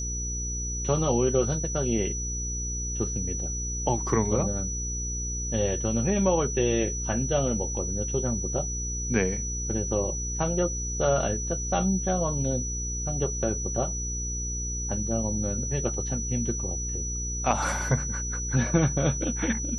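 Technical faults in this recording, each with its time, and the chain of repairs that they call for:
hum 60 Hz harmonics 8 -33 dBFS
tone 5900 Hz -32 dBFS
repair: de-hum 60 Hz, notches 8; notch 5900 Hz, Q 30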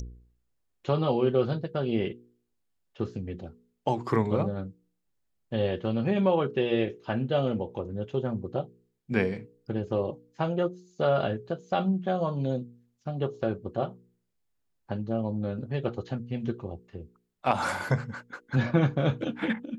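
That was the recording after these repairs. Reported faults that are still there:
none

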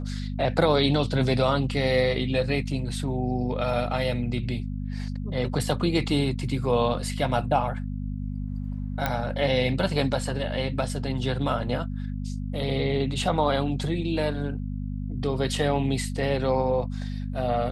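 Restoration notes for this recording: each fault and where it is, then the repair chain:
hum 50 Hz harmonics 5 -31 dBFS
9.06 pop -11 dBFS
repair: de-click; de-hum 50 Hz, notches 5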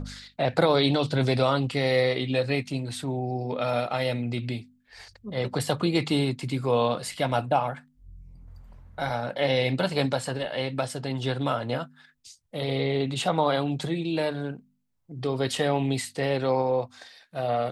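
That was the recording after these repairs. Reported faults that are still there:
none

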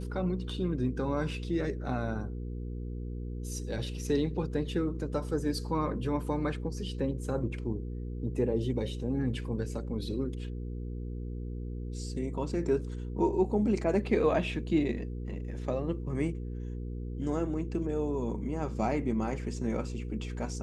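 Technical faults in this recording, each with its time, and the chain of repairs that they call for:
hum 60 Hz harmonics 8 -37 dBFS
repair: de-hum 60 Hz, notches 8

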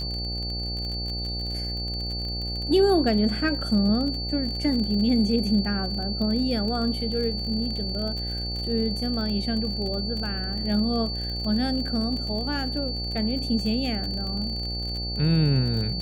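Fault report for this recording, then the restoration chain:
buzz 60 Hz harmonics 14 -32 dBFS
crackle 40/s -31 dBFS
tone 4500 Hz -31 dBFS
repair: de-click; de-hum 60 Hz, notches 14; notch 4500 Hz, Q 30

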